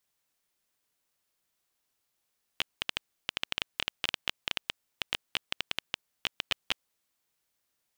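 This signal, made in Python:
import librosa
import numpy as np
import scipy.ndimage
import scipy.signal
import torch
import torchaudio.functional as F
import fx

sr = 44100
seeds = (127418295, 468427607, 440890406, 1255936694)

y = fx.geiger_clicks(sr, seeds[0], length_s=4.47, per_s=9.6, level_db=-10.0)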